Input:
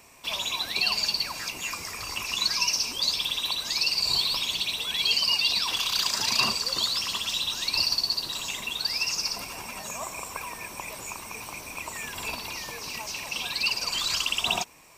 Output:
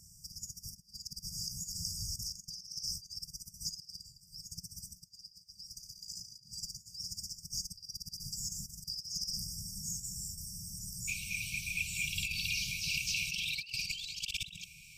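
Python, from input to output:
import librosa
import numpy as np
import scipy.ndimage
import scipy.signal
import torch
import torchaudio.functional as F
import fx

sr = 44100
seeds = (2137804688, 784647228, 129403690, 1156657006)

y = fx.high_shelf(x, sr, hz=6100.0, db=-9.0)
y = fx.over_compress(y, sr, threshold_db=-36.0, ratio=-0.5)
y = fx.brickwall_bandstop(y, sr, low_hz=200.0, high_hz=fx.steps((0.0, 4700.0), (11.07, 2200.0)))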